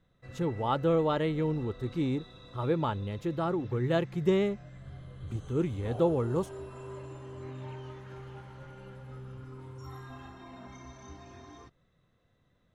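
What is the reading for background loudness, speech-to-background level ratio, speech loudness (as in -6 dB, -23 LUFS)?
-46.5 LUFS, 16.0 dB, -30.5 LUFS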